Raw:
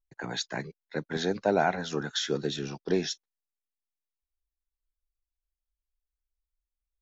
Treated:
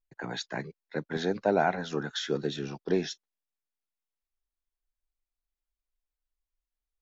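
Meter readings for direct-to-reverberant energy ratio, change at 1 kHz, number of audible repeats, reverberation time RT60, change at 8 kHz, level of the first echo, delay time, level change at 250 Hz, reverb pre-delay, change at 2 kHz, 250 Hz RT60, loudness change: no reverb, -0.5 dB, no echo, no reverb, no reading, no echo, no echo, -0.5 dB, no reverb, -1.0 dB, no reverb, -0.5 dB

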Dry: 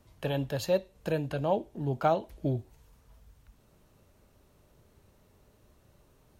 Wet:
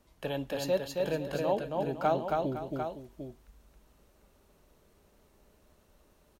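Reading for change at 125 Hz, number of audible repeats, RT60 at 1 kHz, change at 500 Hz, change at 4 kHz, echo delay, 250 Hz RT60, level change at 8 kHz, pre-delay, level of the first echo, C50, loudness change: -6.5 dB, 3, no reverb, 0.0 dB, 0.0 dB, 272 ms, no reverb, no reading, no reverb, -3.0 dB, no reverb, -1.5 dB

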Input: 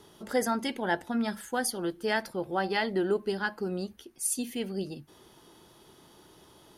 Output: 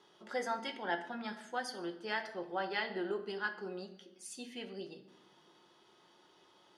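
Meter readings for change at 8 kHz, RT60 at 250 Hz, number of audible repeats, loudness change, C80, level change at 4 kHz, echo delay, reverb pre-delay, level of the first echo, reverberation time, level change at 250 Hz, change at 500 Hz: -17.5 dB, 1.6 s, no echo, -8.5 dB, 14.5 dB, -6.5 dB, no echo, 5 ms, no echo, 0.95 s, -12.0 dB, -9.0 dB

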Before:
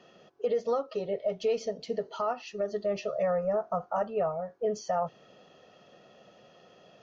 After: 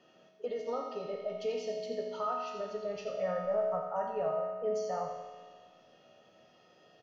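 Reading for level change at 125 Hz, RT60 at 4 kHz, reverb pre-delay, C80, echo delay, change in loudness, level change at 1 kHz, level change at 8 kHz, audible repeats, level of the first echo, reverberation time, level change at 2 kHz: -6.5 dB, 1.5 s, 3 ms, 3.5 dB, 86 ms, -4.0 dB, -3.5 dB, no reading, 1, -8.5 dB, 1.6 s, -4.0 dB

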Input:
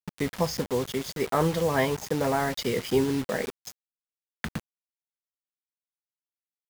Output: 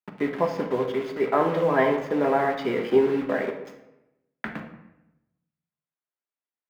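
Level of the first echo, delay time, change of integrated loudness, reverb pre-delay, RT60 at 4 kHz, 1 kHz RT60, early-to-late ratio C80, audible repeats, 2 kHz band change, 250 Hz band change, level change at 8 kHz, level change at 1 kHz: no echo, no echo, +3.5 dB, 3 ms, 0.60 s, 0.85 s, 10.5 dB, no echo, +2.5 dB, +2.0 dB, under -15 dB, +4.0 dB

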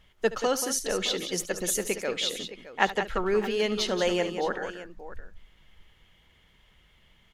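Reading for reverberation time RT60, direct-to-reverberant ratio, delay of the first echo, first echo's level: no reverb, no reverb, 72 ms, -16.0 dB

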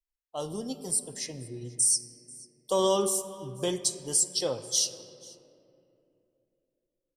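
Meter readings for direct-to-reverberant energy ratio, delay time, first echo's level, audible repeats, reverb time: 10.5 dB, 487 ms, -23.5 dB, 1, 2.8 s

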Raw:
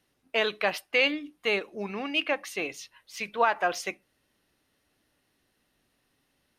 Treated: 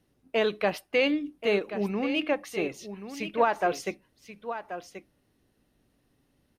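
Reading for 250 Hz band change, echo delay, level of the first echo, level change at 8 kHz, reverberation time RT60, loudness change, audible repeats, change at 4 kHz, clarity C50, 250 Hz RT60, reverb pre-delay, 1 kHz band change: +6.5 dB, 1082 ms, -11.0 dB, -3.5 dB, no reverb, -0.5 dB, 1, -4.0 dB, no reverb, no reverb, no reverb, 0.0 dB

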